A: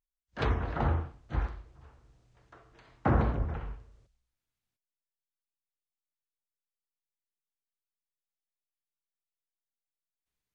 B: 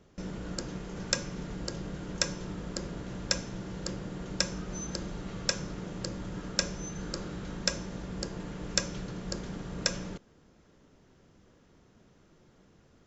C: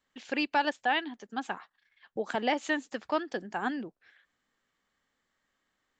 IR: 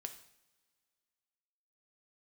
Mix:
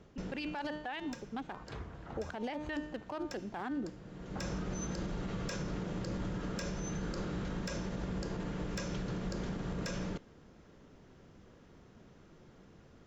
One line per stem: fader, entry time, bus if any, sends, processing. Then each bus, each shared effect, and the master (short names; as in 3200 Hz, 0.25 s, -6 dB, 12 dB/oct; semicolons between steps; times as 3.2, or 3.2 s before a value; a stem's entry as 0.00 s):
-16.5 dB, 1.30 s, no send, high shelf 5200 Hz +9.5 dB
+2.5 dB, 0.00 s, send -17.5 dB, soft clip -18 dBFS, distortion -12 dB; high shelf 6800 Hz -11 dB; auto duck -22 dB, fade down 0.85 s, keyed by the third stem
+1.5 dB, 0.00 s, no send, Wiener smoothing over 25 samples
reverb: on, pre-delay 3 ms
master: de-hum 302 Hz, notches 15; limiter -29.5 dBFS, peak gain reduction 17 dB